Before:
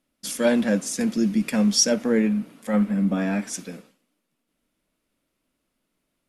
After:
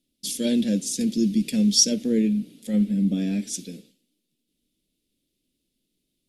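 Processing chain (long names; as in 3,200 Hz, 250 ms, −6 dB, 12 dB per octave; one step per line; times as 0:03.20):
drawn EQ curve 390 Hz 0 dB, 1,100 Hz −28 dB, 3,600 Hz +5 dB, 6,000 Hz +1 dB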